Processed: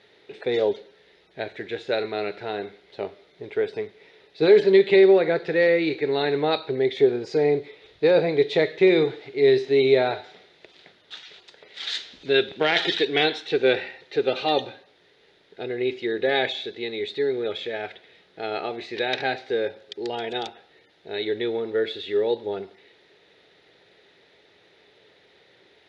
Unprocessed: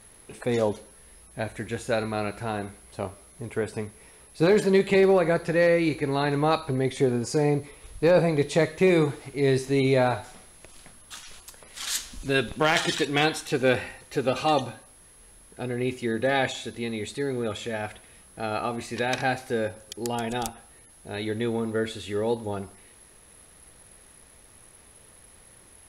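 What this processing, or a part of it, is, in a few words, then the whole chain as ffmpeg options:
kitchen radio: -af "highpass=210,equalizer=f=230:t=q:w=4:g=-8,equalizer=f=410:t=q:w=4:g=8,equalizer=f=1.1k:t=q:w=4:g=-10,equalizer=f=2k:t=q:w=4:g=4,equalizer=f=3.7k:t=q:w=4:g=8,lowpass=f=4.5k:w=0.5412,lowpass=f=4.5k:w=1.3066"

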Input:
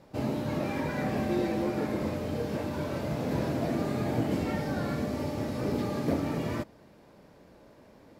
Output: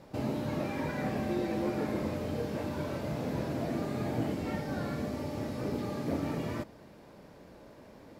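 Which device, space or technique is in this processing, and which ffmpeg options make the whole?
de-esser from a sidechain: -filter_complex "[0:a]asplit=2[a][b];[b]highpass=f=5.2k:w=0.5412,highpass=f=5.2k:w=1.3066,apad=whole_len=361203[c];[a][c]sidechaincompress=threshold=-59dB:ratio=8:attack=3.1:release=34,volume=2.5dB"

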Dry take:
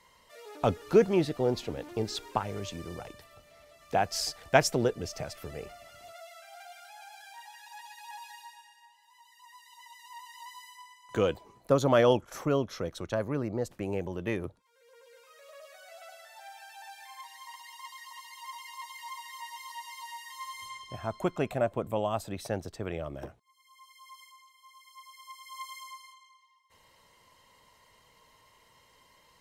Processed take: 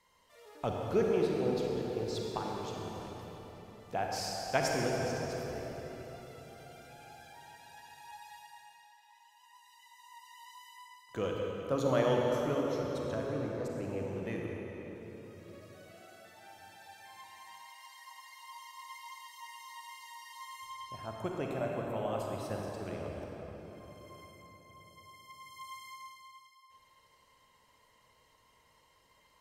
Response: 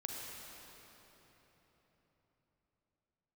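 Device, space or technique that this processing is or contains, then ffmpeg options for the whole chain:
cathedral: -filter_complex "[1:a]atrim=start_sample=2205[a];[0:a][a]afir=irnorm=-1:irlink=0,asettb=1/sr,asplit=3[b][c][d];[b]atrim=end=15.934[e];[c]atrim=start=15.93:end=16.59,asetpts=PTS-STARTPTS,afade=t=in:d=0.004:c=qsin,afade=t=out:st=0.656:d=0.004:c=qsin,highpass=f=210:p=1[f];[d]atrim=start=16.586[g];[e][f]acrossfade=d=0.004:c1=hsin:c2=qsin[h];[h][g]acrossfade=d=0.004:c1=qsin:c2=hsin,volume=-5dB"

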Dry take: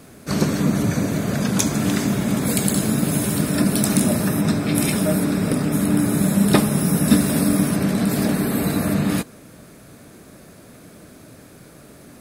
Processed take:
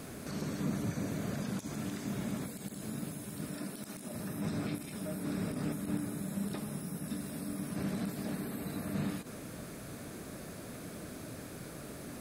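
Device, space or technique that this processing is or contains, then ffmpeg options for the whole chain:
de-esser from a sidechain: -filter_complex "[0:a]asettb=1/sr,asplit=3[a][b][c];[a]atrim=end=3.544[d];[b]atrim=start=3.54:end=4.14,asetpts=PTS-STARTPTS,afade=t=in:d=0.004:c=qsin,afade=t=out:st=0.596:d=0.004:c=qsin,highpass=f=270:p=1[e];[c]atrim=start=4.136[f];[d][e]acrossfade=d=0.004:c1=hsin:c2=qsin[g];[g][f]acrossfade=d=0.004:c1=qsin:c2=hsin,asplit=2[h][i];[i]highpass=f=4k:p=1,apad=whole_len=538194[j];[h][j]sidechaincompress=threshold=-49dB:ratio=10:attack=3.2:release=43"

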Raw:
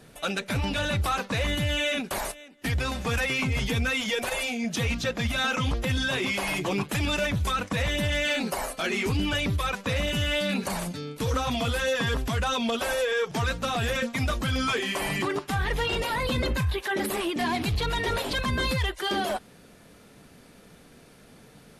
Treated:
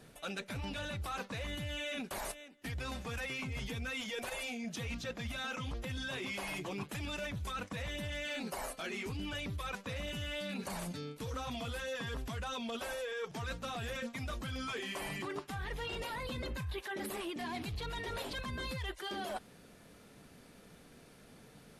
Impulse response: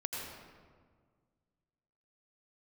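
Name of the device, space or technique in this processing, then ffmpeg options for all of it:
compression on the reversed sound: -af "areverse,acompressor=threshold=-32dB:ratio=6,areverse,volume=-5.5dB"

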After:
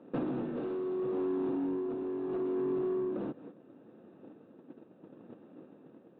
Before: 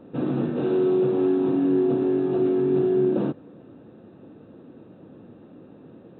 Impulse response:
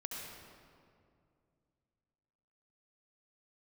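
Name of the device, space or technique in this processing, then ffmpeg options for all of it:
AM radio: -af "agate=range=-14dB:threshold=-43dB:ratio=16:detection=peak,highpass=190,lowpass=3.3k,acompressor=threshold=-35dB:ratio=10,asoftclip=type=tanh:threshold=-33.5dB,tremolo=f=0.73:d=0.37,volume=7.5dB"

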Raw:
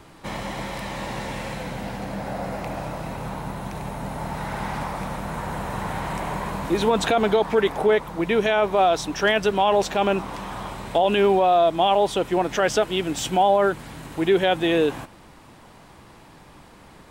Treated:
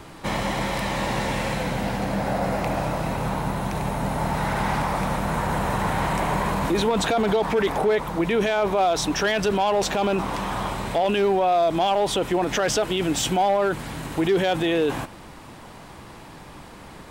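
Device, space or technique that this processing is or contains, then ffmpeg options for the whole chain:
clipper into limiter: -af "asoftclip=type=hard:threshold=-12.5dB,alimiter=limit=-20dB:level=0:latency=1:release=19,volume=5.5dB"

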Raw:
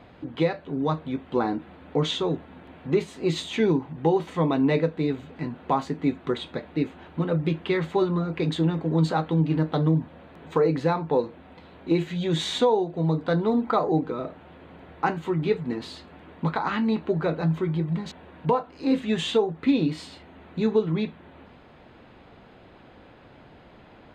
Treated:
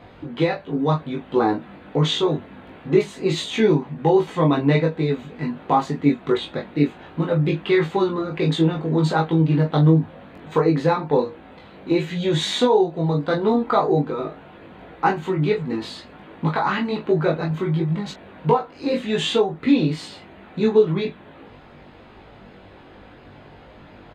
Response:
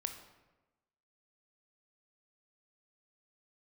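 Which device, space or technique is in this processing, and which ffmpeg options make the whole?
double-tracked vocal: -filter_complex "[0:a]asplit=2[a][b];[b]adelay=21,volume=-5dB[c];[a][c]amix=inputs=2:normalize=0,flanger=delay=18.5:depth=2.1:speed=1.4,volume=7dB"

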